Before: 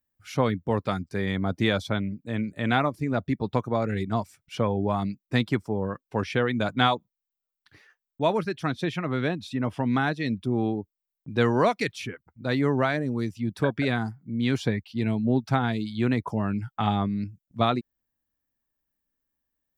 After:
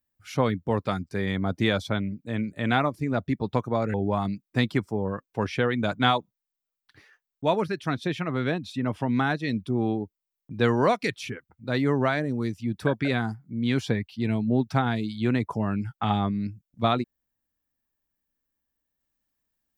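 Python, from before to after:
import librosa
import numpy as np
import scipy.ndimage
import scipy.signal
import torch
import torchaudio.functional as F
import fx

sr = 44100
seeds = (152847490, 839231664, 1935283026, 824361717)

y = fx.edit(x, sr, fx.cut(start_s=3.94, length_s=0.77), tone=tone)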